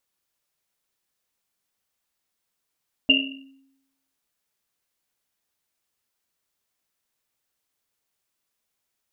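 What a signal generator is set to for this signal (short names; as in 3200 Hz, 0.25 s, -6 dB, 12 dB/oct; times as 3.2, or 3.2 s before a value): Risset drum, pitch 270 Hz, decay 0.89 s, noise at 2800 Hz, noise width 170 Hz, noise 65%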